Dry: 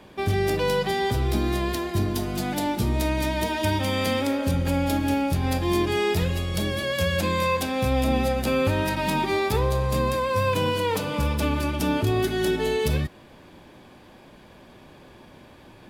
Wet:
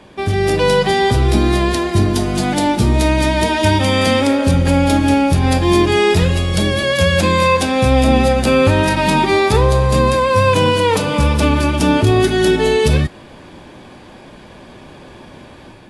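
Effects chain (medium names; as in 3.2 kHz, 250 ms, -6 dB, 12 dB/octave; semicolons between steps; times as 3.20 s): level rider gain up to 5 dB; trim +5.5 dB; AAC 64 kbps 24 kHz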